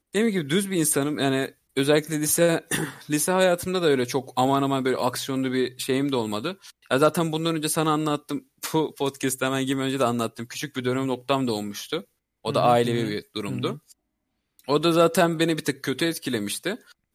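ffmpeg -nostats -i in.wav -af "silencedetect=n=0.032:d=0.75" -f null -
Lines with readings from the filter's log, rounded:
silence_start: 13.74
silence_end: 14.68 | silence_duration: 0.94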